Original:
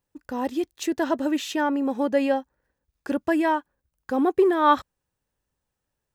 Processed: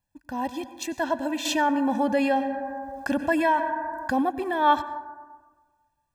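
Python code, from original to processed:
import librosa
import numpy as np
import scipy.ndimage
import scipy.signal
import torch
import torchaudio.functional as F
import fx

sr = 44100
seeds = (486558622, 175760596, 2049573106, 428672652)

y = x + 0.91 * np.pad(x, (int(1.2 * sr / 1000.0), 0))[:len(x)]
y = fx.rev_plate(y, sr, seeds[0], rt60_s=1.4, hf_ratio=0.3, predelay_ms=80, drr_db=13.0)
y = fx.env_flatten(y, sr, amount_pct=50, at=(1.45, 4.22))
y = F.gain(torch.from_numpy(y), -3.5).numpy()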